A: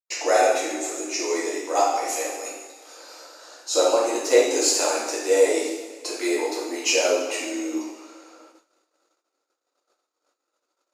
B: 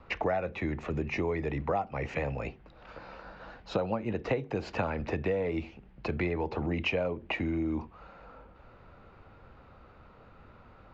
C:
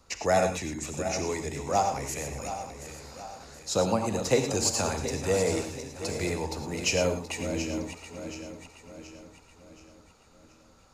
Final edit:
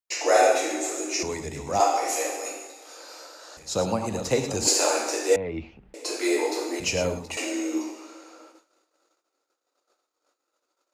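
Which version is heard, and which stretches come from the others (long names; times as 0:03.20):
A
0:01.23–0:01.80: punch in from C
0:03.57–0:04.67: punch in from C
0:05.36–0:05.94: punch in from B
0:06.80–0:07.37: punch in from C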